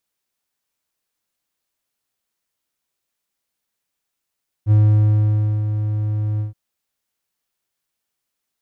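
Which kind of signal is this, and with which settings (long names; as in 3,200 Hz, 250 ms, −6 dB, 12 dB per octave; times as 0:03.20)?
note with an ADSR envelope triangle 106 Hz, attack 52 ms, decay 912 ms, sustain −9 dB, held 1.74 s, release 134 ms −7 dBFS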